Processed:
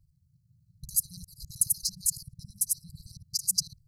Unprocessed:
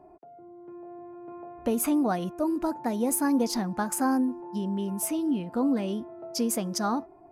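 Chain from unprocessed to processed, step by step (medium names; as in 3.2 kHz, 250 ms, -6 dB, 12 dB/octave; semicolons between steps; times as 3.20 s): time reversed locally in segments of 105 ms; brick-wall FIR band-stop 150–3900 Hz; granular stretch 0.53×, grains 38 ms; trim +8 dB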